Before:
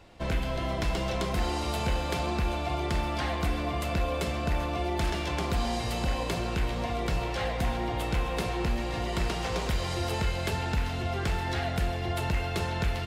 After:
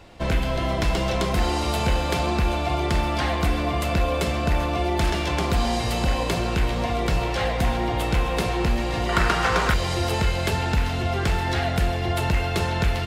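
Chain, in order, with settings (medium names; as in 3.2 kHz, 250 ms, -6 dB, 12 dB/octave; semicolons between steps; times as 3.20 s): 9.09–9.74 s: peaking EQ 1.4 kHz +13 dB 0.92 oct; trim +6.5 dB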